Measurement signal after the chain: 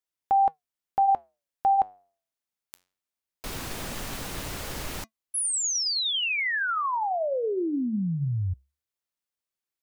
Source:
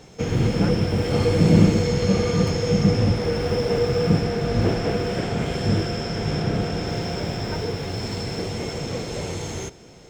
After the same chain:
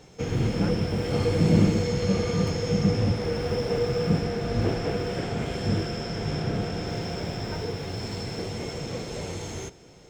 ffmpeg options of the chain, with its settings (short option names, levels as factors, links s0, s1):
-af "flanger=delay=2.2:depth=9.2:regen=-85:speed=0.2:shape=sinusoidal"